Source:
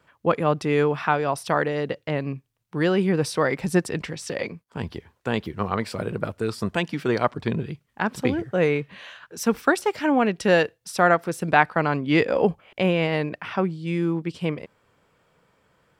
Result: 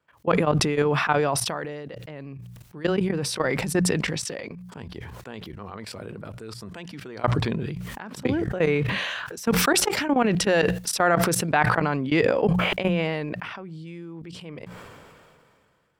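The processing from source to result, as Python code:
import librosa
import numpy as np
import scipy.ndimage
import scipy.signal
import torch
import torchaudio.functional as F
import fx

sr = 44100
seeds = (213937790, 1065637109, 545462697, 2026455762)

y = fx.level_steps(x, sr, step_db=19)
y = fx.hum_notches(y, sr, base_hz=60, count=3)
y = fx.sustainer(y, sr, db_per_s=25.0)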